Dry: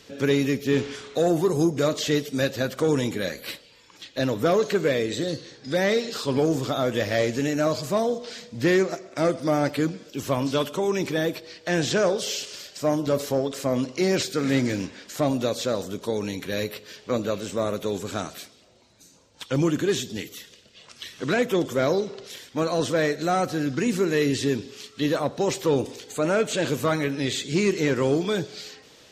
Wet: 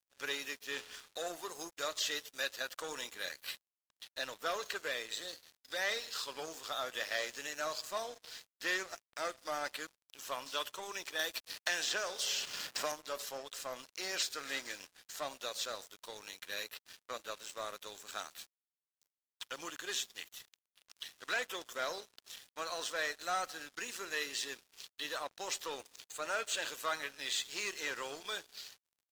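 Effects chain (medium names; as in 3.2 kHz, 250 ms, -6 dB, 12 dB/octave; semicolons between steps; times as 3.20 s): high-pass 1.1 kHz 12 dB/octave; band-stop 2.2 kHz, Q 10; crossover distortion -44.5 dBFS; 11.19–12.92 s: three bands compressed up and down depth 100%; trim -4.5 dB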